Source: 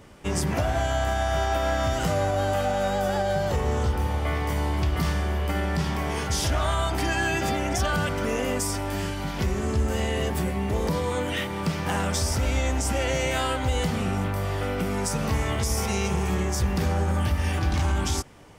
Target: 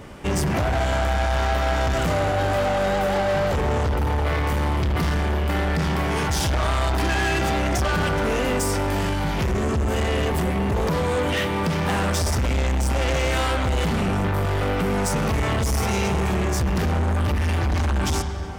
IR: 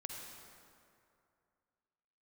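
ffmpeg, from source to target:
-filter_complex "[0:a]asplit=2[link_01][link_02];[1:a]atrim=start_sample=2205,lowpass=4100[link_03];[link_02][link_03]afir=irnorm=-1:irlink=0,volume=-2dB[link_04];[link_01][link_04]amix=inputs=2:normalize=0,asoftclip=type=tanh:threshold=-25dB,volume=6dB"

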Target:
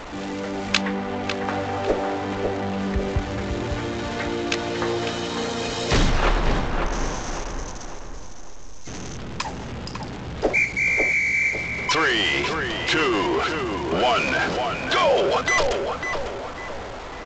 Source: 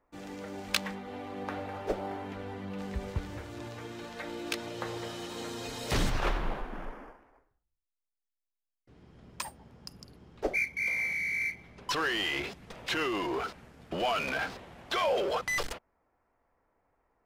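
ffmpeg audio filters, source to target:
ffmpeg -i in.wav -filter_complex "[0:a]aeval=exprs='val(0)+0.5*0.0119*sgn(val(0))':channel_layout=same,asettb=1/sr,asplit=3[link_01][link_02][link_03];[link_01]atrim=end=0.814[link_04];[link_02]atrim=start=0.81:end=1.24,asetpts=PTS-STARTPTS,afade=type=in:duration=0.004:curve=qsin,afade=type=out:start_time=0.426:duration=0.004:curve=qsin,acrossover=split=3500[link_05][link_06];[link_06]acompressor=threshold=-55dB:ratio=4:attack=1:release=60[link_07];[link_05][link_07]amix=inputs=2:normalize=0[link_08];[link_03]atrim=start=1.236[link_09];[link_04][link_08]acrossfade=duration=0.004:curve1=hsin:curve2=qsin[link_10];[link_10][link_09]acrossfade=duration=0.004:curve1=qsin:curve2=hsin,asettb=1/sr,asplit=3[link_11][link_12][link_13];[link_11]atrim=end=6.854[link_14];[link_12]atrim=start=6.85:end=9.17,asetpts=PTS-STARTPTS,afade=type=in:duration=0.004:curve=qsin,afade=type=out:start_time=2.316:duration=0.004:curve=qsin,lowpass=frequency=6200:width_type=q:width=7.7[link_15];[link_13]atrim=start=9.166[link_16];[link_14][link_15]acrossfade=duration=0.004:curve1=hsin:curve2=qsin[link_17];[link_17][link_16]acrossfade=duration=0.004:curve1=qsin:curve2=hsin,asplit=2[link_18][link_19];[link_19]adelay=550,lowpass=frequency=2400:poles=1,volume=-5dB,asplit=2[link_20][link_21];[link_21]adelay=550,lowpass=frequency=2400:poles=1,volume=0.43,asplit=2[link_22][link_23];[link_23]adelay=550,lowpass=frequency=2400:poles=1,volume=0.43,asplit=2[link_24][link_25];[link_25]adelay=550,lowpass=frequency=2400:poles=1,volume=0.43,asplit=2[link_26][link_27];[link_27]adelay=550,lowpass=frequency=2400:poles=1,volume=0.43[link_28];[link_20][link_22][link_24][link_26][link_28]amix=inputs=5:normalize=0[link_29];[link_18][link_29]amix=inputs=2:normalize=0,volume=8.5dB" -ar 16000 -c:a g722 out.g722

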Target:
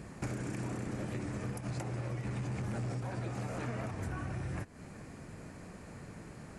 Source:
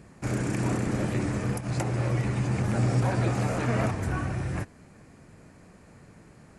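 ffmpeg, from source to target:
ffmpeg -i in.wav -filter_complex "[0:a]asettb=1/sr,asplit=3[link_01][link_02][link_03];[link_01]atrim=end=2.254[link_04];[link_02]atrim=start=2.25:end=2.94,asetpts=PTS-STARTPTS,afade=type=in:duration=0.004:curve=qsin,afade=type=out:start_time=0.686:duration=0.004:curve=qsin,aeval=exprs='0.2*(cos(1*acos(clip(val(0)/0.2,-1,1)))-cos(1*PI/2))+0.0282*(cos(5*acos(clip(val(0)/0.2,-1,1)))-cos(5*PI/2))':channel_layout=same[link_05];[link_03]atrim=start=2.936[link_06];[link_04][link_05]acrossfade=duration=0.004:curve1=hsin:curve2=qsin[link_07];[link_07][link_06]acrossfade=duration=0.004:curve1=qsin:curve2=hsin,acompressor=threshold=-38dB:ratio=16,volume=3.5dB" out.wav

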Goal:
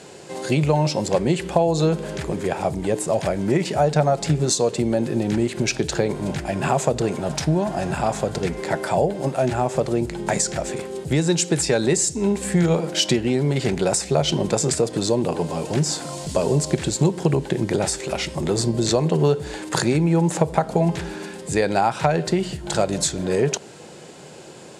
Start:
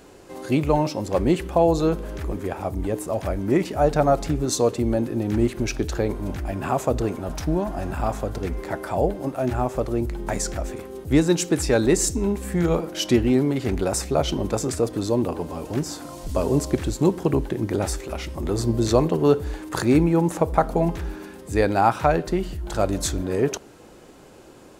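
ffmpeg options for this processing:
ffmpeg -i in.wav -af "aemphasis=mode=production:type=50fm,acompressor=threshold=-21dB:ratio=6,highpass=140,equalizer=frequency=150:width_type=q:width=4:gain=8,equalizer=frequency=280:width_type=q:width=4:gain=-8,equalizer=frequency=1200:width_type=q:width=4:gain=-6,equalizer=frequency=6000:width_type=q:width=4:gain=-5,lowpass=frequency=7700:width=0.5412,lowpass=frequency=7700:width=1.3066,volume=7dB" out.wav

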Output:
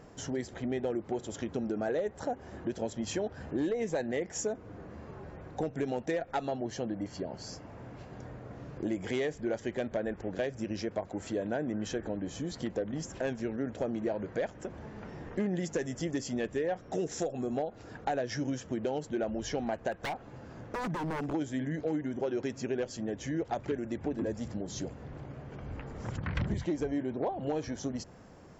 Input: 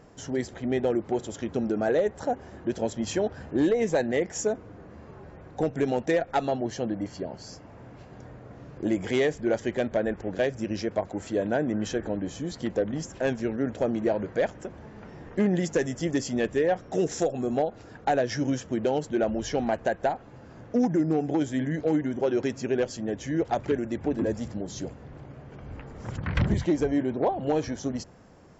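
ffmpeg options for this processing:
ffmpeg -i in.wav -filter_complex "[0:a]asplit=3[link_01][link_02][link_03];[link_01]afade=type=out:start_time=19.91:duration=0.02[link_04];[link_02]aeval=exprs='0.0562*(abs(mod(val(0)/0.0562+3,4)-2)-1)':channel_layout=same,afade=type=in:start_time=19.91:duration=0.02,afade=type=out:start_time=21.32:duration=0.02[link_05];[link_03]afade=type=in:start_time=21.32:duration=0.02[link_06];[link_04][link_05][link_06]amix=inputs=3:normalize=0,acompressor=threshold=-35dB:ratio=2" out.wav

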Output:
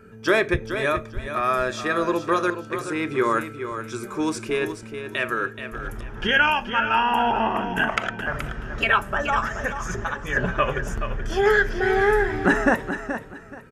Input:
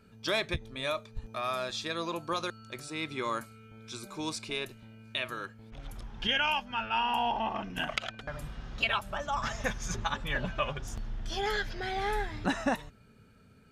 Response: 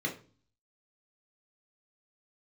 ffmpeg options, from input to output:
-filter_complex "[0:a]equalizer=frequency=400:width_type=o:width=0.67:gain=9,equalizer=frequency=1600:width_type=o:width=0.67:gain=9,equalizer=frequency=4000:width_type=o:width=0.67:gain=-10,asettb=1/sr,asplit=3[link_01][link_02][link_03];[link_01]atrim=end=9.414[link_04];[link_02]atrim=start=9.41:end=10.37,asetpts=PTS-STARTPTS,afade=type=in:duration=0.004:curve=qsin,afade=type=out:start_time=0.956:duration=0.004:curve=qsin,acompressor=threshold=-36dB:ratio=2[link_05];[link_03]atrim=start=10.366[link_06];[link_04][link_05]acrossfade=duration=0.004:curve1=hsin:curve2=qsin[link_07];[link_07][link_06]acrossfade=duration=0.004:curve1=qsin:curve2=hsin,aecho=1:1:427|854|1281:0.335|0.0804|0.0193,asplit=2[link_08][link_09];[1:a]atrim=start_sample=2205[link_10];[link_09][link_10]afir=irnorm=-1:irlink=0,volume=-17dB[link_11];[link_08][link_11]amix=inputs=2:normalize=0,aresample=32000,aresample=44100,volume=7dB"

